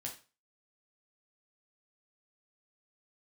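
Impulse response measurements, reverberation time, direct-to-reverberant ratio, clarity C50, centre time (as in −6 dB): 0.35 s, −0.5 dB, 10.0 dB, 19 ms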